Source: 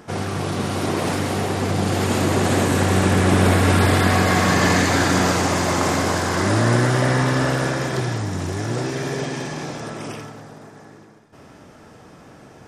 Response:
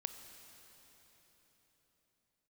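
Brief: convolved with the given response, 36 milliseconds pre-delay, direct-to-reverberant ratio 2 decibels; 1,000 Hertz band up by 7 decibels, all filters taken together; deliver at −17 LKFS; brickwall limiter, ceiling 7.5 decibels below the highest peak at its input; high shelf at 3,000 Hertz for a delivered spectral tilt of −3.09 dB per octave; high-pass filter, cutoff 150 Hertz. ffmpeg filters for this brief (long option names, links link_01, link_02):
-filter_complex "[0:a]highpass=150,equalizer=frequency=1000:width_type=o:gain=8,highshelf=frequency=3000:gain=8,alimiter=limit=-7dB:level=0:latency=1,asplit=2[link_01][link_02];[1:a]atrim=start_sample=2205,adelay=36[link_03];[link_02][link_03]afir=irnorm=-1:irlink=0,volume=0dB[link_04];[link_01][link_04]amix=inputs=2:normalize=0,volume=-1dB"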